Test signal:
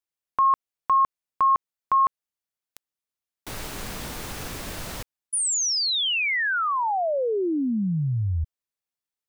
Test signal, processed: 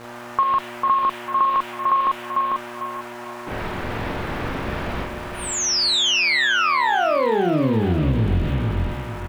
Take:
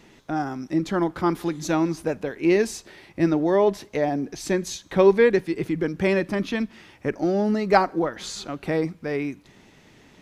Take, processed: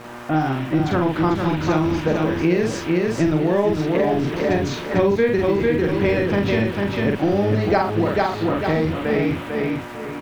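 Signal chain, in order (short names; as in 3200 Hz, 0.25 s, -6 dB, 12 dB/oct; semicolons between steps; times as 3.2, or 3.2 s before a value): octaver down 1 oct, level +1 dB; buzz 120 Hz, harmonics 15, -44 dBFS -3 dB/oct; low shelf 170 Hz -9 dB; band noise 660–3300 Hz -45 dBFS; low shelf 430 Hz +3 dB; doubler 45 ms -3 dB; low-pass opened by the level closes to 1200 Hz, open at -15.5 dBFS; LPF 6000 Hz 12 dB/oct; on a send: feedback echo 0.447 s, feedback 32%, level -5.5 dB; on the sum: compressor 4:1, threshold -22 dBFS; sample gate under -46.5 dBFS; gain +6 dB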